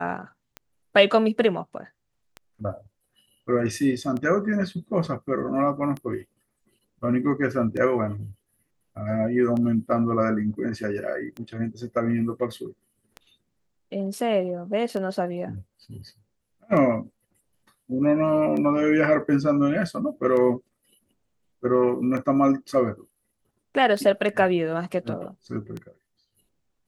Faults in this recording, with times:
tick 33 1/3 rpm -21 dBFS

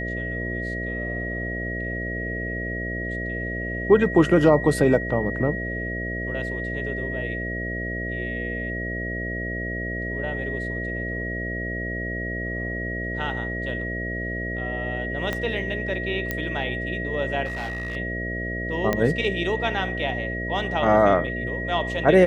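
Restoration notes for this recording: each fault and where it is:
buzz 60 Hz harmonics 11 -31 dBFS
tone 1900 Hz -30 dBFS
15.33 pop -13 dBFS
16.31 pop -11 dBFS
17.45–17.97 clipped -26 dBFS
18.93 pop -9 dBFS

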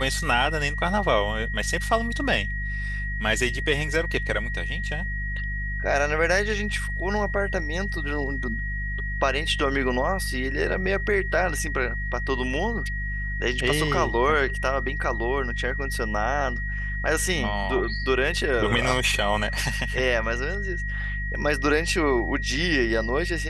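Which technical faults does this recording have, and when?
hum 50 Hz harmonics 4 -30 dBFS
tone 1900 Hz -31 dBFS

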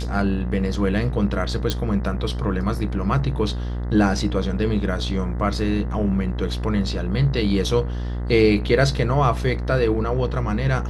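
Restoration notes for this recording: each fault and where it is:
buzz 60 Hz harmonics 34 -26 dBFS
1.7 pop

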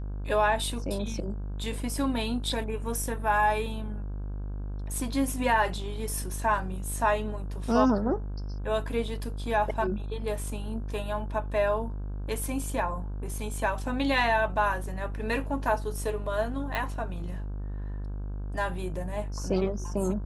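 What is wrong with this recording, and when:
buzz 50 Hz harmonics 33 -34 dBFS
16.75 pop

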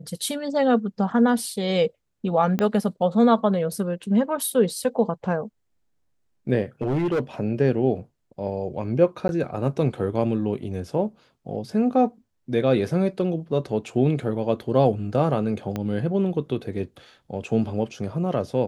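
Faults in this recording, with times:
2.59 pop -11 dBFS
6.82–7.2 clipped -19.5 dBFS
9.28–9.29 gap 11 ms
15.76 pop -15 dBFS

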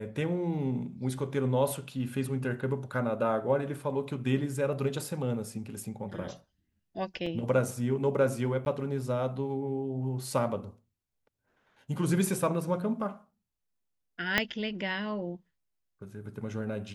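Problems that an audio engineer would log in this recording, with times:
7.26 gap 4.4 ms
8.65–8.66 gap 11 ms
14.38 pop -9 dBFS

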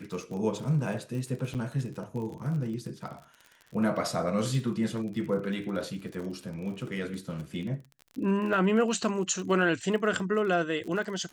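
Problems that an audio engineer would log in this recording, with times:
crackle 38/s -37 dBFS
1.54–1.55 gap 8 ms

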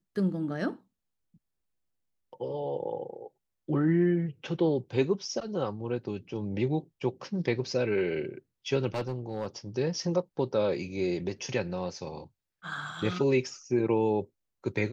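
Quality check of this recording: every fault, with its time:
8.94–9.47 clipped -27 dBFS

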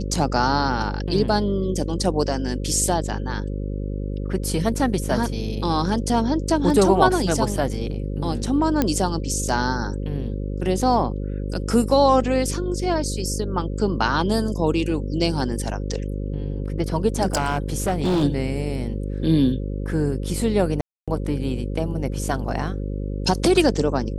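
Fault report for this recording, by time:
buzz 50 Hz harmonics 11 -27 dBFS
8.82 pop -6 dBFS
17.25–18.24 clipped -17 dBFS
20.81–21.08 gap 0.266 s

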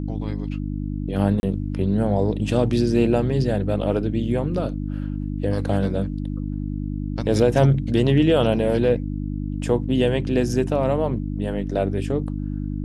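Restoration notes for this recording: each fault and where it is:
hum 50 Hz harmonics 6 -27 dBFS
1.4–1.43 gap 31 ms

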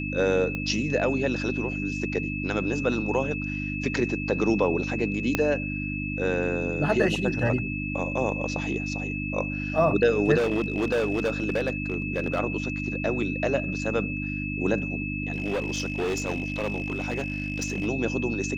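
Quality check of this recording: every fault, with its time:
hum 50 Hz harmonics 6 -32 dBFS
tone 2600 Hz -33 dBFS
0.55 pop -19 dBFS
5.35 pop -8 dBFS
10.37–12.4 clipped -20.5 dBFS
15.32–17.86 clipped -23.5 dBFS

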